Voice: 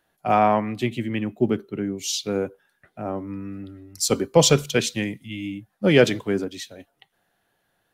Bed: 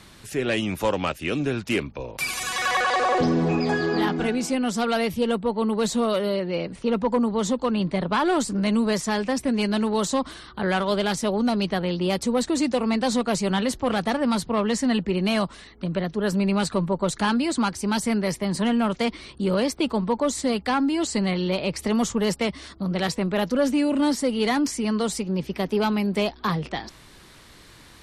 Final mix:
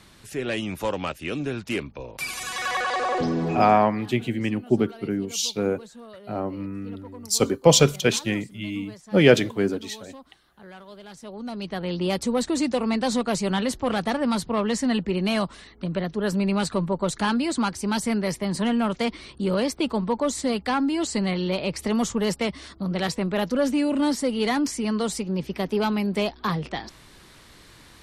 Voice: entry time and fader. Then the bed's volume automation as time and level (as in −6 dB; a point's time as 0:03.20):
3.30 s, +0.5 dB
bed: 0:03.62 −3.5 dB
0:03.87 −21 dB
0:11.00 −21 dB
0:11.98 −1 dB